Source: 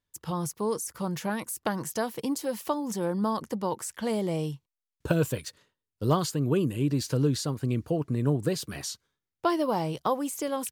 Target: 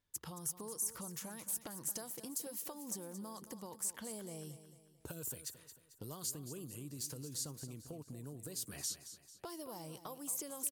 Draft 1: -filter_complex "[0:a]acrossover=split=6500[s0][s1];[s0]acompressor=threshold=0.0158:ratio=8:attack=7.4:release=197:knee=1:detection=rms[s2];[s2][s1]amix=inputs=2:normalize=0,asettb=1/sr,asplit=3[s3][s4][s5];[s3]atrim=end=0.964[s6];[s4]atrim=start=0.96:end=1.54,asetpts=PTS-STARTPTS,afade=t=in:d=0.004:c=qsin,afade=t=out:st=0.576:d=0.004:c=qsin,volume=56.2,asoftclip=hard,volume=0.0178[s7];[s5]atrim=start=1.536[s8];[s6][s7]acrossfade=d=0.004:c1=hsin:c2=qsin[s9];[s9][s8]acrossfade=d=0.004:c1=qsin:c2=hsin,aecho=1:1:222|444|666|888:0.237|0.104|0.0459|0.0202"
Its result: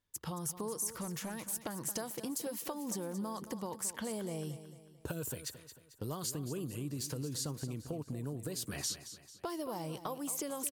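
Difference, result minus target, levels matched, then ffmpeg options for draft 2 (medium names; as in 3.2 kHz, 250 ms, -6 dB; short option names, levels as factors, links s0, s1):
compression: peak gain reduction -8.5 dB
-filter_complex "[0:a]acrossover=split=6500[s0][s1];[s0]acompressor=threshold=0.00531:ratio=8:attack=7.4:release=197:knee=1:detection=rms[s2];[s2][s1]amix=inputs=2:normalize=0,asettb=1/sr,asplit=3[s3][s4][s5];[s3]atrim=end=0.964[s6];[s4]atrim=start=0.96:end=1.54,asetpts=PTS-STARTPTS,afade=t=in:d=0.004:c=qsin,afade=t=out:st=0.576:d=0.004:c=qsin,volume=56.2,asoftclip=hard,volume=0.0178[s7];[s5]atrim=start=1.536[s8];[s6][s7]acrossfade=d=0.004:c1=hsin:c2=qsin[s9];[s9][s8]acrossfade=d=0.004:c1=qsin:c2=hsin,aecho=1:1:222|444|666|888:0.237|0.104|0.0459|0.0202"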